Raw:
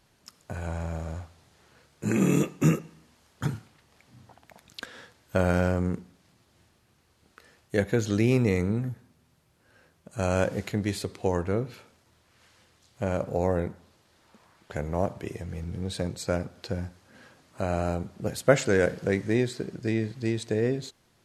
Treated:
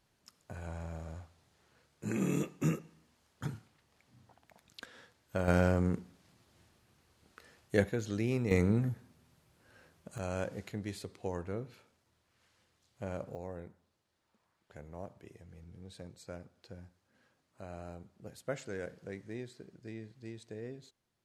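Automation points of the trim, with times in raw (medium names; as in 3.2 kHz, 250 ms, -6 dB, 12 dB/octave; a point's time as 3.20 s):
-9.5 dB
from 5.48 s -3 dB
from 7.89 s -10 dB
from 8.51 s -1.5 dB
from 10.18 s -11.5 dB
from 13.35 s -18 dB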